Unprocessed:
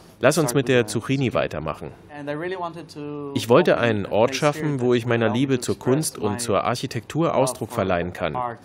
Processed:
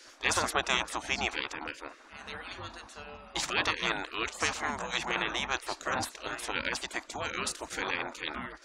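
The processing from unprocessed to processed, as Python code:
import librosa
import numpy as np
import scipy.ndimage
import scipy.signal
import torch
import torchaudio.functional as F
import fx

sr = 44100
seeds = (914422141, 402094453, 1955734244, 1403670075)

y = fx.curve_eq(x, sr, hz=(190.0, 420.0, 800.0, 2900.0, 7000.0, 13000.0), db=(0, -26, 2, -9, -4, -26))
y = fx.spec_gate(y, sr, threshold_db=-20, keep='weak')
y = y * librosa.db_to_amplitude(8.5)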